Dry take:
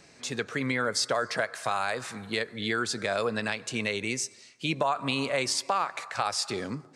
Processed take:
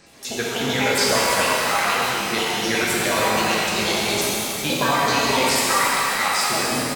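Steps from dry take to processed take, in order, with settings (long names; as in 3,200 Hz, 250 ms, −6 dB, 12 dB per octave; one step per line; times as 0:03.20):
pitch shifter gated in a rhythm +8.5 semitones, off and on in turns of 61 ms
echo with shifted repeats 202 ms, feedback 53%, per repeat −31 Hz, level −12 dB
reverb with rising layers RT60 3 s, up +12 semitones, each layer −8 dB, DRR −6 dB
level +2.5 dB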